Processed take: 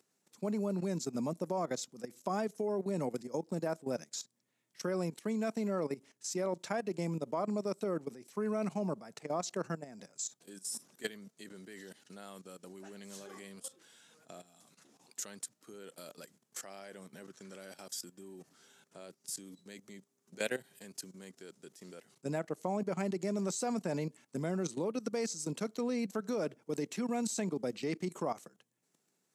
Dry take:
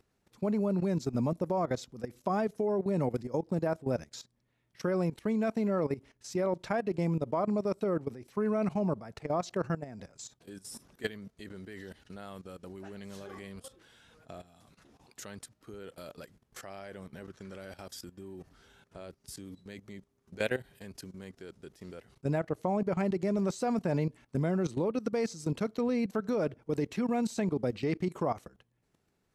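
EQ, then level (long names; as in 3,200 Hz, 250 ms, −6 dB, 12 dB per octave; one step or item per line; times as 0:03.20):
high-pass filter 160 Hz 24 dB per octave
high-shelf EQ 4,800 Hz +7.5 dB
parametric band 7,300 Hz +7.5 dB 0.89 octaves
−4.5 dB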